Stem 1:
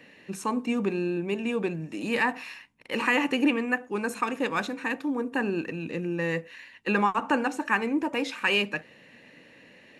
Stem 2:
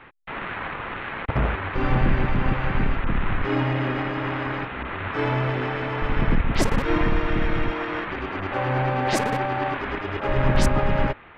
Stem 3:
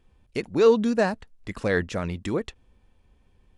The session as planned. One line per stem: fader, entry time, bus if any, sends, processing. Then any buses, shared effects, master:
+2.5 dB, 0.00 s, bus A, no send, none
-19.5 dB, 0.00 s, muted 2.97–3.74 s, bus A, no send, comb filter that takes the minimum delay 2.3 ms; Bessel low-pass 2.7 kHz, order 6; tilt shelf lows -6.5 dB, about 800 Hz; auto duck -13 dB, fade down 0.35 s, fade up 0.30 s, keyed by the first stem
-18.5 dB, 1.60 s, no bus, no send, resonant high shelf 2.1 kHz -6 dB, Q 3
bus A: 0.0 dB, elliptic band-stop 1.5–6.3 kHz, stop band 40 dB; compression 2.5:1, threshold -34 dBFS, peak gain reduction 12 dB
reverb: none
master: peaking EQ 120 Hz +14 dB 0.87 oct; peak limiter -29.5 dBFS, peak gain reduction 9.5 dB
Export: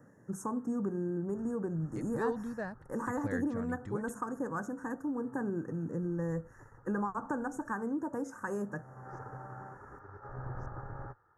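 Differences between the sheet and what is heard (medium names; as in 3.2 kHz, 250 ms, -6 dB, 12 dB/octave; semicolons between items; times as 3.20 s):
stem 1 +2.5 dB -> -5.5 dB; master: missing peak limiter -29.5 dBFS, peak gain reduction 9.5 dB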